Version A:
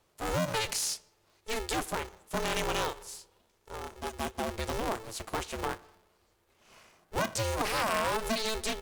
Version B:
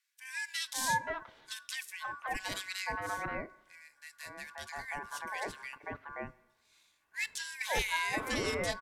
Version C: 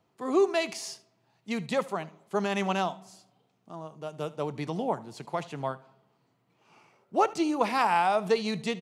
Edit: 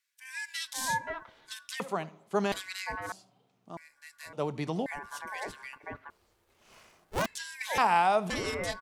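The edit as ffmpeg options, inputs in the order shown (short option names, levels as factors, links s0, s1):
-filter_complex "[2:a]asplit=4[s0][s1][s2][s3];[1:a]asplit=6[s4][s5][s6][s7][s8][s9];[s4]atrim=end=1.802[s10];[s0]atrim=start=1.798:end=2.522[s11];[s5]atrim=start=2.518:end=3.122[s12];[s1]atrim=start=3.118:end=3.772[s13];[s6]atrim=start=3.768:end=4.332[s14];[s2]atrim=start=4.328:end=4.862[s15];[s7]atrim=start=4.858:end=6.102[s16];[0:a]atrim=start=6.098:end=7.262[s17];[s8]atrim=start=7.258:end=7.782[s18];[s3]atrim=start=7.778:end=8.302[s19];[s9]atrim=start=8.298[s20];[s10][s11]acrossfade=d=0.004:c1=hsin:c2=hsin[s21];[s21][s12]acrossfade=d=0.004:c1=hsin:c2=hsin[s22];[s22][s13]acrossfade=d=0.004:c1=hsin:c2=hsin[s23];[s23][s14]acrossfade=d=0.004:c1=hsin:c2=hsin[s24];[s24][s15]acrossfade=d=0.004:c1=hsin:c2=hsin[s25];[s25][s16]acrossfade=d=0.004:c1=hsin:c2=hsin[s26];[s26][s17]acrossfade=d=0.004:c1=hsin:c2=hsin[s27];[s27][s18]acrossfade=d=0.004:c1=hsin:c2=hsin[s28];[s28][s19]acrossfade=d=0.004:c1=hsin:c2=hsin[s29];[s29][s20]acrossfade=d=0.004:c1=hsin:c2=hsin"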